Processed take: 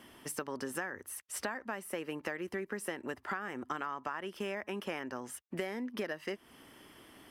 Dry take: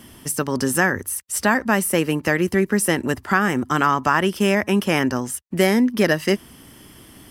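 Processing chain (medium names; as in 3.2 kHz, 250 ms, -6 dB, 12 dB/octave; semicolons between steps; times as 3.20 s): tone controls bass -13 dB, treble -10 dB; compression 10:1, threshold -28 dBFS, peak gain reduction 16 dB; trim -6 dB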